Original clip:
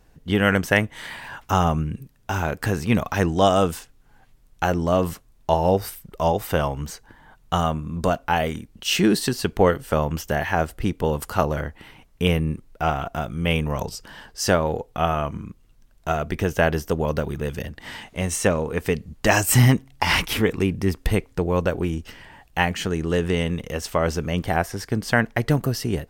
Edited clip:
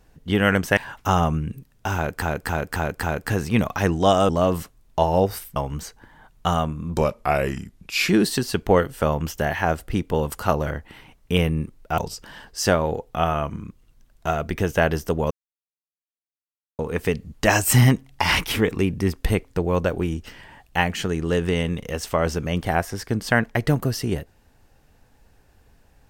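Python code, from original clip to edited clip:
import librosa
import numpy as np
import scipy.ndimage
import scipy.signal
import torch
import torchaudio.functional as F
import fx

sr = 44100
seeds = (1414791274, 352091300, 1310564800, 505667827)

y = fx.edit(x, sr, fx.cut(start_s=0.77, length_s=0.44),
    fx.repeat(start_s=2.39, length_s=0.27, count=5),
    fx.cut(start_s=3.65, length_s=1.15),
    fx.cut(start_s=6.07, length_s=0.56),
    fx.speed_span(start_s=8.04, length_s=0.95, speed=0.85),
    fx.cut(start_s=12.88, length_s=0.91),
    fx.silence(start_s=17.12, length_s=1.48), tone=tone)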